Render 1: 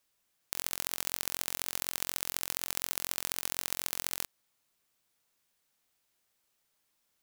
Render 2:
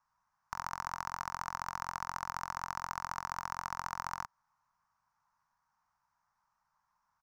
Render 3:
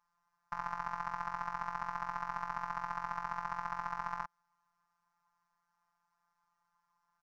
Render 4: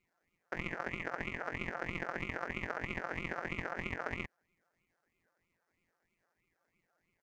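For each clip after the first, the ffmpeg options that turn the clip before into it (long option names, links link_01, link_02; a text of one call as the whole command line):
ffmpeg -i in.wav -af "firequalizer=gain_entry='entry(140,0);entry(200,-4);entry(350,-26);entry(930,13);entry(2200,-11);entry(3300,-23);entry(5600,-9);entry(9000,-28)':delay=0.05:min_phase=1,volume=2dB" out.wav
ffmpeg -i in.wav -filter_complex "[0:a]acrossover=split=3400[link_01][link_02];[link_02]acompressor=threshold=-59dB:ratio=4:attack=1:release=60[link_03];[link_01][link_03]amix=inputs=2:normalize=0,afftfilt=real='hypot(re,im)*cos(PI*b)':imag='0':win_size=1024:overlap=0.75,highshelf=frequency=9300:gain=-11.5,volume=4dB" out.wav
ffmpeg -i in.wav -af "aeval=exprs='val(0)*sin(2*PI*780*n/s+780*0.6/3.1*sin(2*PI*3.1*n/s))':channel_layout=same,volume=2.5dB" out.wav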